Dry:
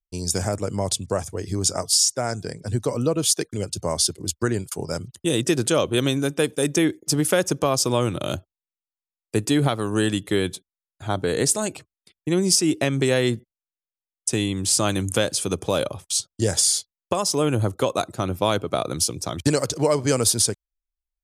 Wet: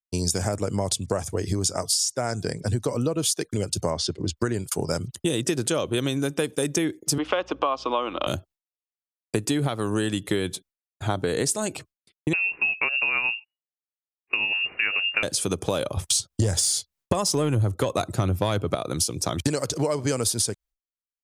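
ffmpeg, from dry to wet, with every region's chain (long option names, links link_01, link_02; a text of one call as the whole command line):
ffmpeg -i in.wav -filter_complex "[0:a]asettb=1/sr,asplit=3[link_01][link_02][link_03];[link_01]atrim=end=3.904[link_04];[link_02]atrim=start=3.9:end=4.37,asetpts=PTS-STARTPTS,afade=type=in:duration=0.004:curve=qsin,afade=type=out:start_time=0.466:duration=0.004:curve=qsin,lowpass=6100,aemphasis=mode=reproduction:type=50fm[link_05];[link_03]atrim=start=4.366[link_06];[link_04][link_05]acrossfade=duration=0.004:curve1=hsin:curve2=qsin[link_07];[link_07][link_06]acrossfade=duration=0.004:curve1=qsin:curve2=hsin,asettb=1/sr,asplit=3[link_08][link_09][link_10];[link_08]atrim=end=7.184[link_11];[link_09]atrim=start=7.18:end=8.27,asetpts=PTS-STARTPTS,afade=type=in:duration=0.004:curve=qsin,afade=type=out:start_time=1.086:duration=0.004:curve=qsin,highpass=frequency=290:width=0.5412,highpass=frequency=290:width=1.3066,equalizer=frequency=390:width_type=q:width=4:gain=-7,equalizer=frequency=780:width_type=q:width=4:gain=3,equalizer=frequency=1100:width_type=q:width=4:gain=9,equalizer=frequency=1700:width_type=q:width=4:gain=-4,equalizer=frequency=2900:width_type=q:width=4:gain=6,lowpass=frequency=3500:width=0.5412,lowpass=frequency=3500:width=1.3066,aeval=exprs='val(0)+0.00251*(sin(2*PI*60*n/s)+sin(2*PI*2*60*n/s)/2+sin(2*PI*3*60*n/s)/3+sin(2*PI*4*60*n/s)/4+sin(2*PI*5*60*n/s)/5)':channel_layout=same[link_12];[link_10]atrim=start=8.266[link_13];[link_11][link_12]acrossfade=duration=0.004:curve1=hsin:curve2=qsin[link_14];[link_14][link_13]acrossfade=duration=0.004:curve1=qsin:curve2=hsin,asettb=1/sr,asplit=3[link_15][link_16][link_17];[link_15]atrim=end=12.334[link_18];[link_16]atrim=start=12.33:end=15.23,asetpts=PTS-STARTPTS,afade=type=in:duration=0.004:curve=qsin,afade=type=out:start_time=2.896:duration=0.004:curve=qsin,tremolo=f=9.5:d=0.35,lowpass=frequency=2500:width_type=q:width=0.5098,lowpass=frequency=2500:width_type=q:width=0.6013,lowpass=frequency=2500:width_type=q:width=0.9,lowpass=frequency=2500:width_type=q:width=2.563,afreqshift=-2900[link_19];[link_17]atrim=start=15.226[link_20];[link_18][link_19]acrossfade=duration=0.004:curve1=hsin:curve2=qsin[link_21];[link_21][link_20]acrossfade=duration=0.004:curve1=qsin:curve2=hsin,asettb=1/sr,asplit=3[link_22][link_23][link_24];[link_22]atrim=end=15.974[link_25];[link_23]atrim=start=15.97:end=18.75,asetpts=PTS-STARTPTS,afade=type=in:duration=0.004:curve=qsin,afade=type=out:start_time=2.776:duration=0.004:curve=qsin,equalizer=frequency=83:width=0.79:gain=8.5,acontrast=66[link_26];[link_24]atrim=start=18.746[link_27];[link_25][link_26]acrossfade=duration=0.004:curve1=hsin:curve2=qsin[link_28];[link_28][link_27]acrossfade=duration=0.004:curve1=qsin:curve2=hsin,agate=range=-33dB:threshold=-46dB:ratio=3:detection=peak,acompressor=threshold=-27dB:ratio=6,volume=5.5dB" out.wav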